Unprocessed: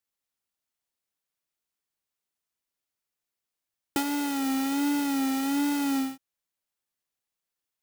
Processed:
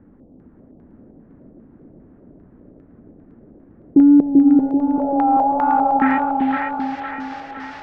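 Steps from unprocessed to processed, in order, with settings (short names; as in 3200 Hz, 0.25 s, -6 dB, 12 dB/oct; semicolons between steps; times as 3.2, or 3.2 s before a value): power-law curve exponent 0.35; low-pass sweep 260 Hz -> 5500 Hz, 4.39–6.94; 4.2–6.02 fixed phaser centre 780 Hz, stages 4; LFO low-pass square 2.5 Hz 620–1700 Hz; on a send: split-band echo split 690 Hz, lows 0.388 s, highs 0.509 s, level -3 dB; on the sum: gain +5.5 dB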